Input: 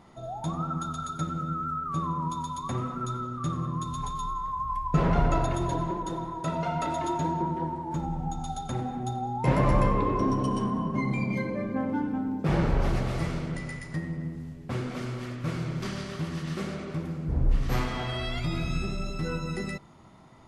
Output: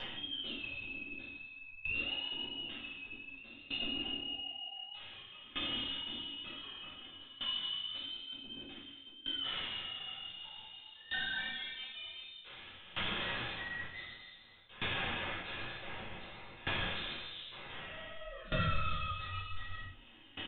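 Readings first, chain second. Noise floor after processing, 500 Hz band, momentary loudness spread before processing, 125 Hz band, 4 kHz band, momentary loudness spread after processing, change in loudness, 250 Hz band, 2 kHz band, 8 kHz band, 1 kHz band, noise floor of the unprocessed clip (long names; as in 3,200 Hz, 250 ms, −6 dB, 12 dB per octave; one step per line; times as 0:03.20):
−56 dBFS, −17.0 dB, 9 LU, −19.0 dB, +7.5 dB, 13 LU, −9.5 dB, −20.0 dB, 0.0 dB, below −35 dB, −16.0 dB, −42 dBFS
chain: brickwall limiter −20.5 dBFS, peak gain reduction 10.5 dB
high-pass filter 450 Hz 12 dB per octave
soft clipping −28 dBFS, distortion −19 dB
voice inversion scrambler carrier 3,900 Hz
on a send: ambience of single reflections 33 ms −8 dB, 56 ms −7 dB
on the sum: upward compression, threshold −44 dBFS
rectangular room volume 450 cubic metres, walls furnished, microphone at 5.2 metres
reversed playback
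downward compressor 6 to 1, threshold −35 dBFS, peak gain reduction 14 dB
reversed playback
high-frequency loss of the air 310 metres
flanger 0.6 Hz, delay 7.1 ms, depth 9.6 ms, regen −54%
tilt shelving filter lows +3 dB
tremolo with a ramp in dB decaying 0.54 Hz, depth 19 dB
level +13 dB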